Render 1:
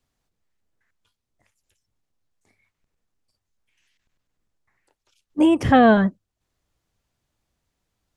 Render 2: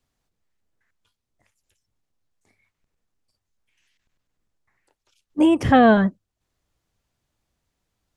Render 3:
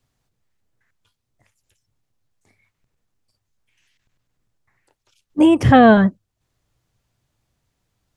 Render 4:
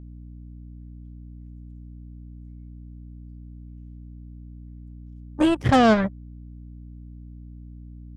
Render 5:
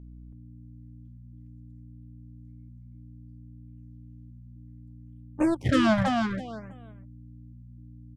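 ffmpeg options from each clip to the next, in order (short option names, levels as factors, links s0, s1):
-af anull
-af "equalizer=f=120:w=2.8:g=8,volume=1.5"
-af "aeval=exprs='0.891*(cos(1*acos(clip(val(0)/0.891,-1,1)))-cos(1*PI/2))+0.112*(cos(7*acos(clip(val(0)/0.891,-1,1)))-cos(7*PI/2))':c=same,aeval=exprs='val(0)+0.0224*(sin(2*PI*60*n/s)+sin(2*PI*2*60*n/s)/2+sin(2*PI*3*60*n/s)/3+sin(2*PI*4*60*n/s)/4+sin(2*PI*5*60*n/s)/5)':c=same,volume=0.473"
-filter_complex "[0:a]asplit=2[s0][s1];[s1]aecho=0:1:326|652|978:0.596|0.119|0.0238[s2];[s0][s2]amix=inputs=2:normalize=0,afftfilt=real='re*(1-between(b*sr/1024,360*pow(5600/360,0.5+0.5*sin(2*PI*0.62*pts/sr))/1.41,360*pow(5600/360,0.5+0.5*sin(2*PI*0.62*pts/sr))*1.41))':imag='im*(1-between(b*sr/1024,360*pow(5600/360,0.5+0.5*sin(2*PI*0.62*pts/sr))/1.41,360*pow(5600/360,0.5+0.5*sin(2*PI*0.62*pts/sr))*1.41))':win_size=1024:overlap=0.75,volume=0.596"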